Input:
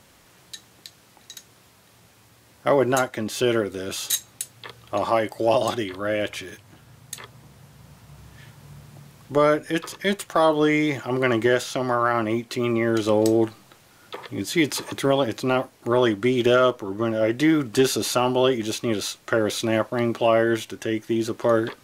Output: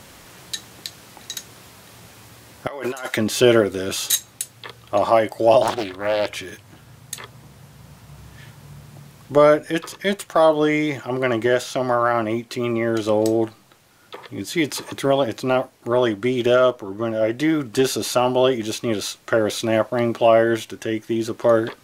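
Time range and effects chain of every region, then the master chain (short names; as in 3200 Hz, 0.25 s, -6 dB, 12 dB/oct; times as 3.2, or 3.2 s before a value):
2.67–3.17 HPF 1400 Hz 6 dB/oct + negative-ratio compressor -37 dBFS
5.62–6.28 G.711 law mismatch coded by A + Doppler distortion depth 0.53 ms
whole clip: dynamic EQ 650 Hz, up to +5 dB, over -33 dBFS, Q 2.7; vocal rider 2 s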